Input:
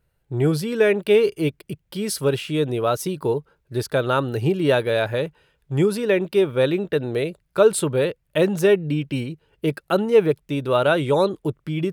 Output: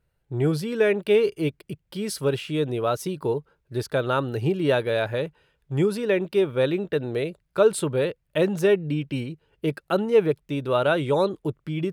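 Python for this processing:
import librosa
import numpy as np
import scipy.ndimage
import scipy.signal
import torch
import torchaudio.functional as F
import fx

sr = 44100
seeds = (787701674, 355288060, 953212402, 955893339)

y = fx.high_shelf(x, sr, hz=8100.0, db=-5.0)
y = y * librosa.db_to_amplitude(-3.0)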